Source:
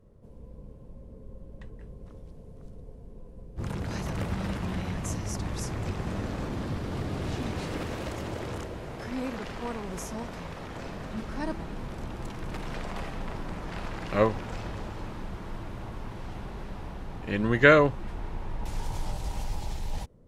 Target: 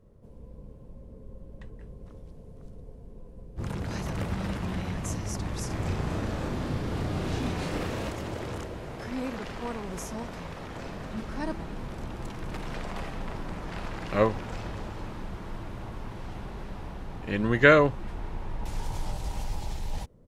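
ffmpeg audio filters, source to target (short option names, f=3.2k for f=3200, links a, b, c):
-filter_complex "[0:a]asplit=3[a][b][c];[a]afade=t=out:st=5.69:d=0.02[d];[b]asplit=2[e][f];[f]adelay=34,volume=-2dB[g];[e][g]amix=inputs=2:normalize=0,afade=t=in:st=5.69:d=0.02,afade=t=out:st=8.09:d=0.02[h];[c]afade=t=in:st=8.09:d=0.02[i];[d][h][i]amix=inputs=3:normalize=0"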